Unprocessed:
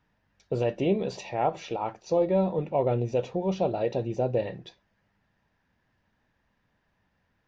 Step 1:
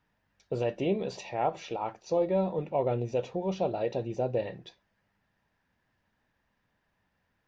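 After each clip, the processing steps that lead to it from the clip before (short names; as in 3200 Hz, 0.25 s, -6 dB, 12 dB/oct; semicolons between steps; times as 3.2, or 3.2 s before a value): low shelf 350 Hz -3 dB; gain -2 dB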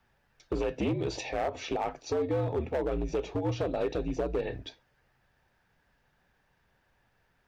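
compressor 8:1, threshold -30 dBFS, peak gain reduction 8.5 dB; frequency shift -70 Hz; hard clip -29.5 dBFS, distortion -14 dB; gain +5.5 dB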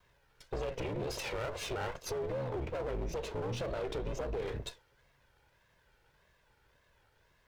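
minimum comb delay 2 ms; wow and flutter 140 cents; limiter -32.5 dBFS, peak gain reduction 11 dB; gain +3 dB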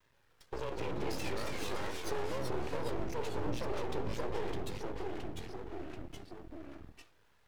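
notch comb 730 Hz; half-wave rectifier; echoes that change speed 0.128 s, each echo -2 st, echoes 3; gain +2 dB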